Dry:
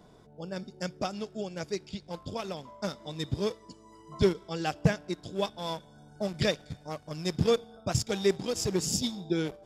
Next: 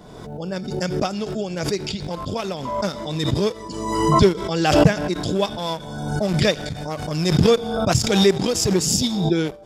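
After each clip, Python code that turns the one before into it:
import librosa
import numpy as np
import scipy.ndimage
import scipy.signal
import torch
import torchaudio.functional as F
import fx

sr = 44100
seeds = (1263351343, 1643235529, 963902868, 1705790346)

y = fx.pre_swell(x, sr, db_per_s=39.0)
y = y * 10.0 ** (8.5 / 20.0)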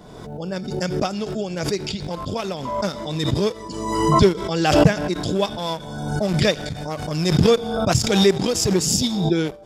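y = x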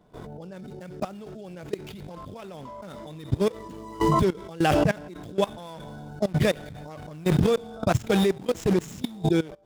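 y = scipy.ndimage.median_filter(x, 9, mode='constant')
y = fx.level_steps(y, sr, step_db=20)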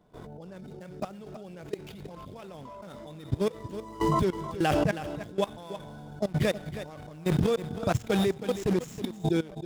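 y = x + 10.0 ** (-12.0 / 20.0) * np.pad(x, (int(320 * sr / 1000.0), 0))[:len(x)]
y = y * 10.0 ** (-4.0 / 20.0)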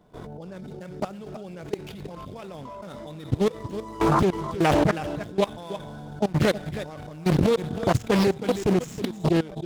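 y = fx.doppler_dist(x, sr, depth_ms=0.88)
y = y * 10.0 ** (5.0 / 20.0)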